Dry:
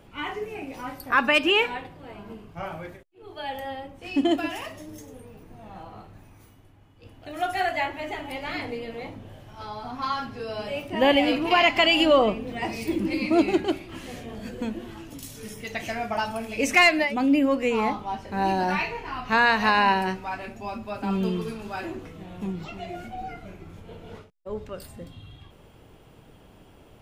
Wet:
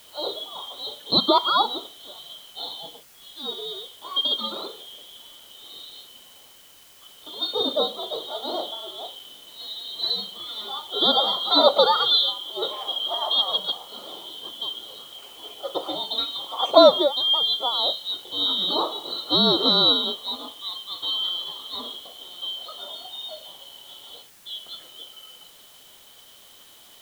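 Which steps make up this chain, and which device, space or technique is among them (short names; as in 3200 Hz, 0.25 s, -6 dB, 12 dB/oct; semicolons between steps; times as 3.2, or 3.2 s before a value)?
graphic EQ 125/250/1000/2000/4000 Hz +6/+4/+10/+12/-7 dB; split-band scrambled radio (four-band scrambler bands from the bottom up 2413; BPF 360–3100 Hz; white noise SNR 26 dB); gain -3.5 dB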